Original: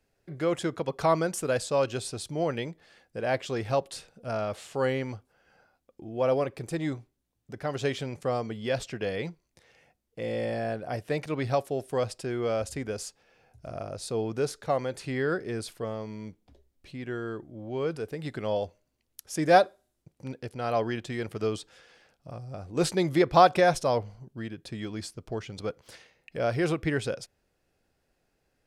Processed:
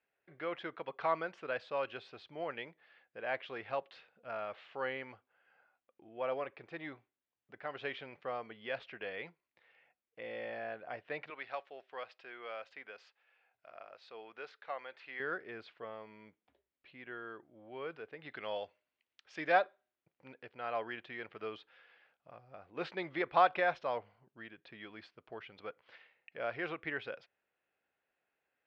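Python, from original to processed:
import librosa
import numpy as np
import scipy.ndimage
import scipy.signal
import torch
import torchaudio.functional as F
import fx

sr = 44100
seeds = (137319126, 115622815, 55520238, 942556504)

y = fx.highpass(x, sr, hz=990.0, slope=6, at=(11.3, 15.2))
y = fx.high_shelf(y, sr, hz=2600.0, db=10.0, at=(18.31, 19.52))
y = scipy.signal.sosfilt(scipy.signal.bessel(6, 1700.0, 'lowpass', norm='mag', fs=sr, output='sos'), y)
y = np.diff(y, prepend=0.0)
y = F.gain(torch.from_numpy(y), 11.0).numpy()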